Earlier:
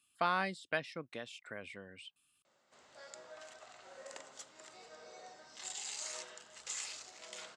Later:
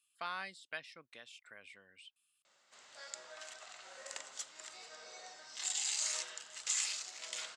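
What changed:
speech -10.5 dB; master: add tilt shelf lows -7.5 dB, about 880 Hz

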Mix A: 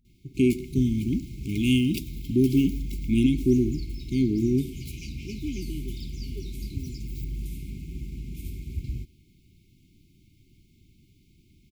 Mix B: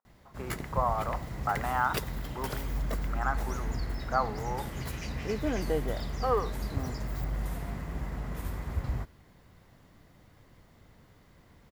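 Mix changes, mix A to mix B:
speech: add Butterworth band-pass 1000 Hz, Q 1.4; master: remove brick-wall FIR band-stop 400–2100 Hz

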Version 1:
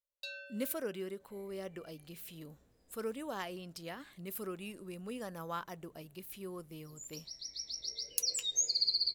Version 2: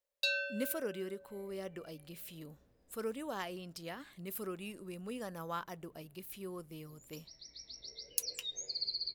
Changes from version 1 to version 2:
first sound +11.5 dB; second sound: add air absorption 180 m

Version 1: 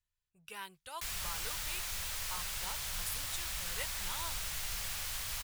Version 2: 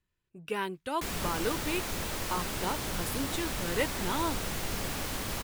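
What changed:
speech: add bell 2200 Hz +5.5 dB 1.7 oct; master: remove passive tone stack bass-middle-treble 10-0-10

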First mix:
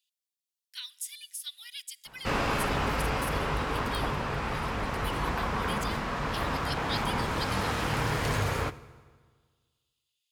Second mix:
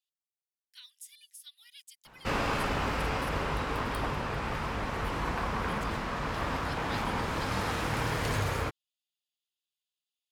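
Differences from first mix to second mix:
speech -10.0 dB; reverb: off

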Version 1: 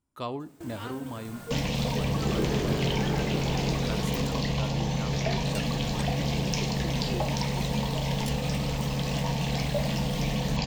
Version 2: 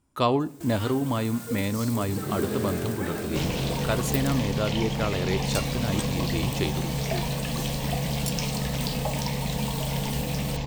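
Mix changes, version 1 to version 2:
speech +11.5 dB; first sound: add high shelf 3400 Hz +10.5 dB; second sound: entry +1.85 s

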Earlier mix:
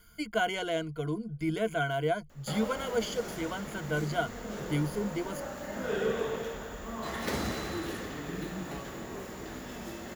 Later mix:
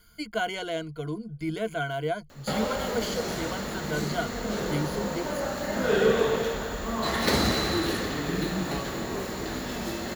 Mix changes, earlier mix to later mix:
background +8.5 dB; master: add bell 4200 Hz +9.5 dB 0.22 oct

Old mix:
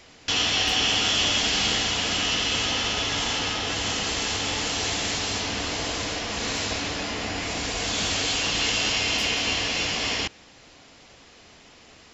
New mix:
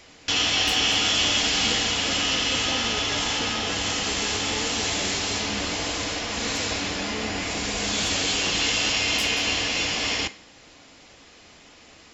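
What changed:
speech +9.0 dB; background: send on

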